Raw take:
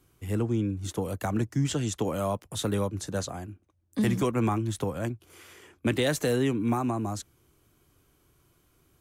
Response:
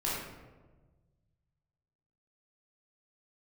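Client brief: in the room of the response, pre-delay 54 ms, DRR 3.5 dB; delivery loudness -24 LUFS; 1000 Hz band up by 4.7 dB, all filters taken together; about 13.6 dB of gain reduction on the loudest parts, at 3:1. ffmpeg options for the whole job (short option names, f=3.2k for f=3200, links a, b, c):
-filter_complex "[0:a]equalizer=f=1k:t=o:g=6,acompressor=threshold=-40dB:ratio=3,asplit=2[a][b];[1:a]atrim=start_sample=2205,adelay=54[c];[b][c]afir=irnorm=-1:irlink=0,volume=-10.5dB[d];[a][d]amix=inputs=2:normalize=0,volume=15dB"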